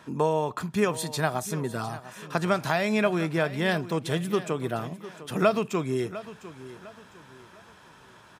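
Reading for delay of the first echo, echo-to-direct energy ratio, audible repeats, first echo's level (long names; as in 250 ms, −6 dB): 703 ms, −15.0 dB, 3, −15.5 dB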